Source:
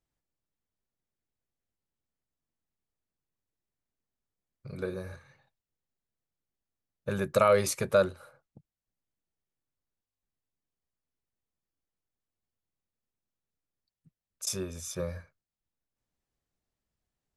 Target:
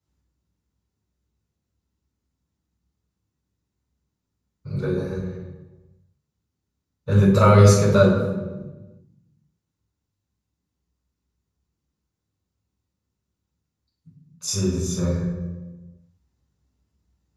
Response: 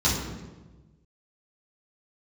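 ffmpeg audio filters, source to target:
-filter_complex "[1:a]atrim=start_sample=2205[a];[0:a][a]afir=irnorm=-1:irlink=0,volume=-7dB"

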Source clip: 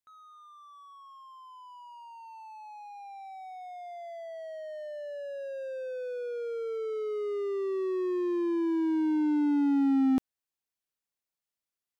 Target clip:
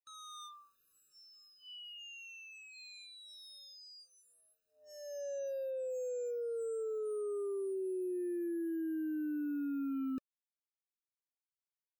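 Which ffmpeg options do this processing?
-af "acrusher=bits=7:mix=0:aa=0.5,asoftclip=type=tanh:threshold=-34dB,acompressor=threshold=-48dB:ratio=4,afftfilt=real='re*eq(mod(floor(b*sr/1024/600),2),0)':imag='im*eq(mod(floor(b*sr/1024/600),2),0)':win_size=1024:overlap=0.75,volume=9dB"

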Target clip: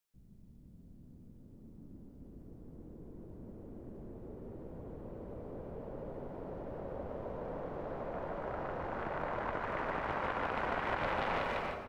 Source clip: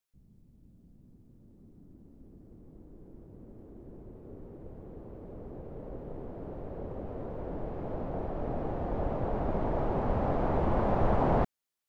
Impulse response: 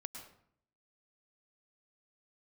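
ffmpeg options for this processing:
-filter_complex "[0:a]aeval=exprs='0.2*(cos(1*acos(clip(val(0)/0.2,-1,1)))-cos(1*PI/2))+0.0141*(cos(5*acos(clip(val(0)/0.2,-1,1)))-cos(5*PI/2))+0.0794*(cos(7*acos(clip(val(0)/0.2,-1,1)))-cos(7*PI/2))':c=same,asplit=2[a][b];[b]adelay=150,highpass=300,lowpass=3.4k,asoftclip=type=hard:threshold=-23.5dB,volume=-8dB[c];[a][c]amix=inputs=2:normalize=0,asplit=2[d][e];[1:a]atrim=start_sample=2205,adelay=148[f];[e][f]afir=irnorm=-1:irlink=0,volume=0dB[g];[d][g]amix=inputs=2:normalize=0,acrossover=split=92|500[h][i][j];[h]acompressor=threshold=-47dB:ratio=4[k];[i]acompressor=threshold=-43dB:ratio=4[l];[j]acompressor=threshold=-30dB:ratio=4[m];[k][l][m]amix=inputs=3:normalize=0,volume=-3dB"

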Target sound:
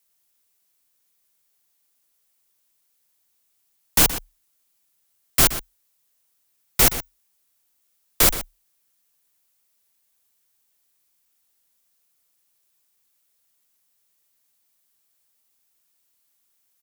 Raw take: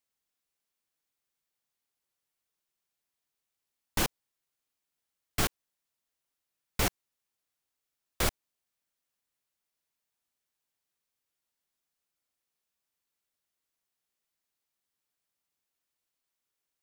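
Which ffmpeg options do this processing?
-filter_complex "[0:a]crystalizer=i=1.5:c=0,afreqshift=-37,asplit=2[a][b];[b]adelay=122.4,volume=-12dB,highshelf=f=4k:g=-2.76[c];[a][c]amix=inputs=2:normalize=0,volume=8dB"

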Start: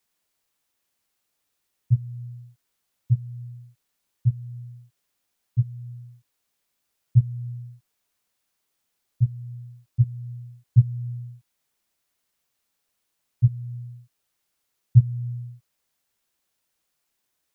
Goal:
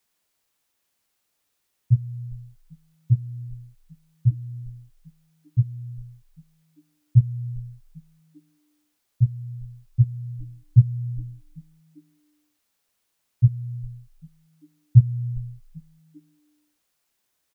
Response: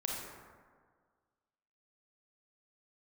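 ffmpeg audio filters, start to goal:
-filter_complex "[0:a]asplit=4[a][b][c][d];[b]adelay=396,afreqshift=-140,volume=-22dB[e];[c]adelay=792,afreqshift=-280,volume=-30dB[f];[d]adelay=1188,afreqshift=-420,volume=-37.9dB[g];[a][e][f][g]amix=inputs=4:normalize=0,volume=2dB"

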